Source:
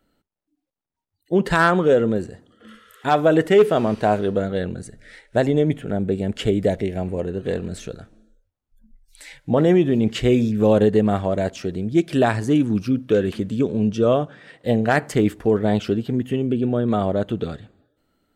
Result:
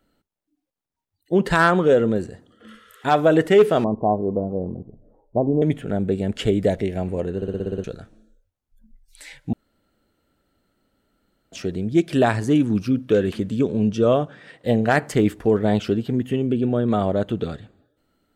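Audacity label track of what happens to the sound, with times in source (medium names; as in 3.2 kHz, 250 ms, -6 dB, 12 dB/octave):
3.840000	5.620000	rippled Chebyshev low-pass 1.1 kHz, ripple 3 dB
7.360000	7.360000	stutter in place 0.06 s, 8 plays
9.530000	11.520000	room tone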